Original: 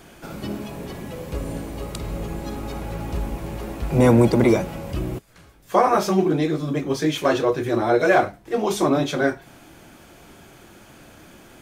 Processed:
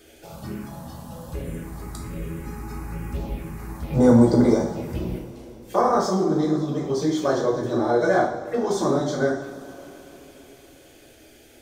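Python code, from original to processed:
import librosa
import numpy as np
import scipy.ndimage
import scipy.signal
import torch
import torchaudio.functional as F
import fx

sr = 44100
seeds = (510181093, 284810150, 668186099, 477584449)

y = fx.env_phaser(x, sr, low_hz=150.0, high_hz=2600.0, full_db=-20.0)
y = fx.hum_notches(y, sr, base_hz=50, count=3)
y = fx.rev_double_slope(y, sr, seeds[0], early_s=0.56, late_s=4.2, knee_db=-18, drr_db=-1.0)
y = y * 10.0 ** (-4.0 / 20.0)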